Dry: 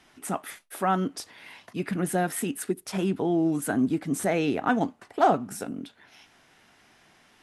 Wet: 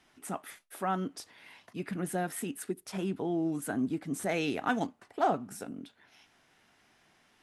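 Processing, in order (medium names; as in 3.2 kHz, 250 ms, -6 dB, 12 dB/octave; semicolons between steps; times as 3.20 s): 4.29–4.87 s: treble shelf 2.1 kHz +9 dB; trim -7 dB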